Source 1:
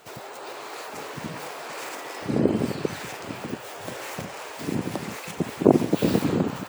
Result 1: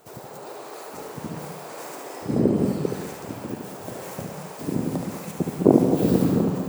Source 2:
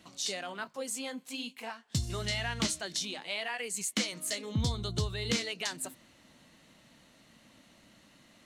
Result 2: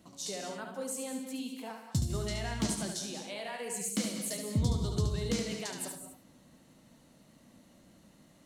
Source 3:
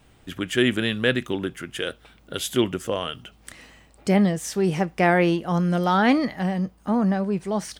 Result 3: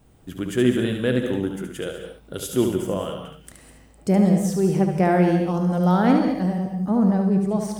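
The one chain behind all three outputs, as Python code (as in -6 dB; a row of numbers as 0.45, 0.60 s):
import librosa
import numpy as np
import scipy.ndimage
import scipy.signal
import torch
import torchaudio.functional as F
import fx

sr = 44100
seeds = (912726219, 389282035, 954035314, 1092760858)

y = fx.peak_eq(x, sr, hz=2600.0, db=-11.5, octaves=2.6)
y = y + 10.0 ** (-6.0 / 20.0) * np.pad(y, (int(72 * sr / 1000.0), 0))[:len(y)]
y = fx.rev_gated(y, sr, seeds[0], gate_ms=230, shape='rising', drr_db=6.5)
y = F.gain(torch.from_numpy(y), 1.5).numpy()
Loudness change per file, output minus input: +3.0, -1.0, +2.0 LU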